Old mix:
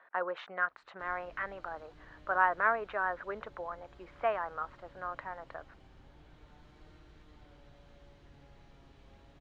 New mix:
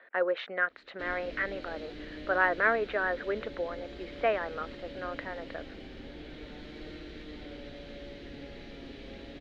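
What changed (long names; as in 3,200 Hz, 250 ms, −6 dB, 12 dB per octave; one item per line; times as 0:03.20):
background +9.0 dB
master: add octave-band graphic EQ 125/250/500/1,000/2,000/4,000/8,000 Hz −6/+10/+9/−9/+8/+9/−5 dB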